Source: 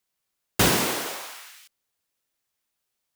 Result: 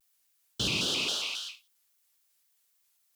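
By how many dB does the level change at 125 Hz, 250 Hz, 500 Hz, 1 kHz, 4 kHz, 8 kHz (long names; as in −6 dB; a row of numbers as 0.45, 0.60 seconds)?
−10.0, −10.0, −12.5, −15.5, +1.0, −8.5 decibels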